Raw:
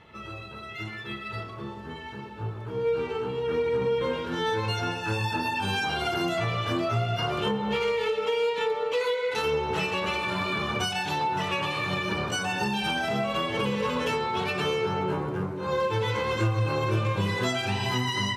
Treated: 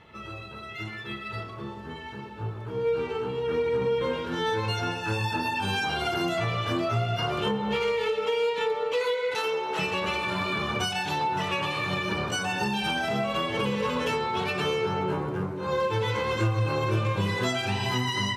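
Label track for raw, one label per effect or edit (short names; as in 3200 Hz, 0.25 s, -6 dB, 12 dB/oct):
9.350000	9.790000	HPF 410 Hz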